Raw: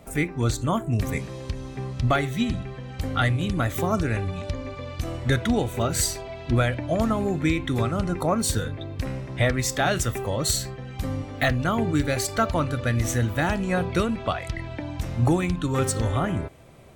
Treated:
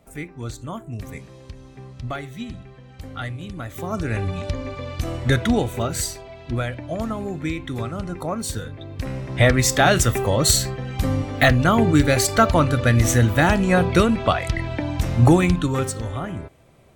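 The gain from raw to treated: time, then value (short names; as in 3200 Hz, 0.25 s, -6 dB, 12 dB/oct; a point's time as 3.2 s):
3.68 s -8 dB
4.25 s +3.5 dB
5.55 s +3.5 dB
6.19 s -3.5 dB
8.72 s -3.5 dB
9.5 s +7 dB
15.54 s +7 dB
15.98 s -4 dB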